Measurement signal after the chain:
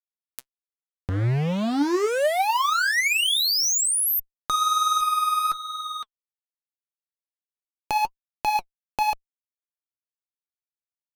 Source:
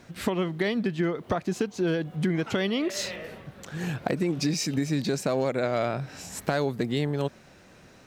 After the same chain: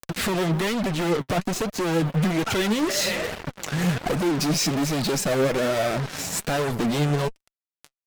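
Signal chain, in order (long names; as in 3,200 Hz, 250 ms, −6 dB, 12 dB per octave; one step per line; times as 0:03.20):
fuzz pedal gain 39 dB, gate −42 dBFS
flanger 1.2 Hz, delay 1.1 ms, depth 6.7 ms, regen +47%
upward compression, threshold −21 dBFS
level −4 dB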